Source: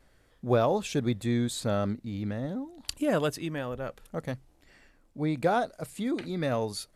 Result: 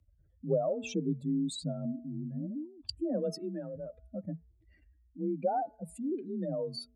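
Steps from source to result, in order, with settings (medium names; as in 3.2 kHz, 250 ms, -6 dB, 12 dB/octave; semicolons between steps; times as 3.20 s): spectral contrast enhancement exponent 2.7; de-hum 205 Hz, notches 11; frequency shift +35 Hz; Shepard-style phaser rising 1.5 Hz; trim -3 dB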